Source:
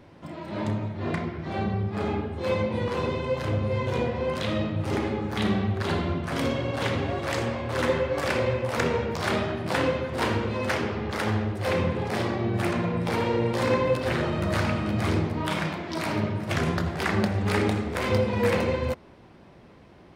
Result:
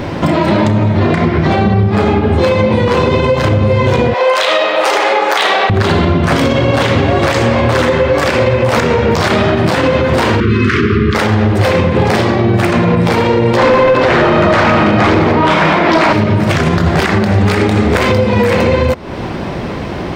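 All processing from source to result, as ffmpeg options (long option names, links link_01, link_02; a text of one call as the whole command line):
ffmpeg -i in.wav -filter_complex "[0:a]asettb=1/sr,asplit=3[link_01][link_02][link_03];[link_01]atrim=end=4.144[link_04];[link_02]atrim=start=4.14:end=5.7,asetpts=PTS-STARTPTS,afade=type=in:duration=0.004:curve=qsin,afade=type=out:start_time=1.556:duration=0.004:curve=qsin,highpass=frequency=550:width=0.5412,highpass=frequency=550:width=1.3066,asoftclip=type=hard:threshold=-22dB,asplit=2[link_05][link_06];[link_06]adelay=35,volume=-12dB[link_07];[link_05][link_07]amix=inputs=2:normalize=0,atrim=end_sample=68796[link_08];[link_03]atrim=start=5.696[link_09];[link_04][link_08]acrossfade=duration=0.004:curve1=hsin:curve2=qsin[link_10];[link_10][link_09]acrossfade=duration=0.004:curve1=qsin:curve2=hsin,asettb=1/sr,asplit=3[link_11][link_12][link_13];[link_11]atrim=end=10.404[link_14];[link_12]atrim=start=10.4:end=11.15,asetpts=PTS-STARTPTS,afade=type=in:duration=0.004:curve=qsin,afade=type=out:start_time=0.746:duration=0.004:curve=qsin,asuperstop=centerf=700:order=12:qfactor=1,aemphasis=mode=reproduction:type=75fm[link_15];[link_13]atrim=start=11.146[link_16];[link_14][link_15]acrossfade=duration=0.004:curve1=hsin:curve2=qsin[link_17];[link_17][link_16]acrossfade=duration=0.004:curve1=qsin:curve2=hsin,asettb=1/sr,asplit=3[link_18][link_19][link_20];[link_18]atrim=end=13.574[link_21];[link_19]atrim=start=13.57:end=16.13,asetpts=PTS-STARTPTS,afade=type=in:duration=0.004:curve=qsin,afade=type=out:start_time=2.556:duration=0.004:curve=qsin,lowpass=8400,asplit=2[link_22][link_23];[link_23]highpass=frequency=720:poles=1,volume=20dB,asoftclip=type=tanh:threshold=-11dB[link_24];[link_22][link_24]amix=inputs=2:normalize=0,lowpass=frequency=1400:poles=1,volume=-6dB,aecho=1:1:172:0.251,atrim=end_sample=112896[link_25];[link_20]atrim=start=16.126[link_26];[link_21][link_25]acrossfade=duration=0.004:curve1=hsin:curve2=qsin[link_27];[link_27][link_26]acrossfade=duration=0.004:curve1=qsin:curve2=hsin,equalizer=frequency=11000:width_type=o:width=0.39:gain=-8.5,acompressor=threshold=-38dB:ratio=6,alimiter=level_in=32.5dB:limit=-1dB:release=50:level=0:latency=1,volume=-1.5dB" out.wav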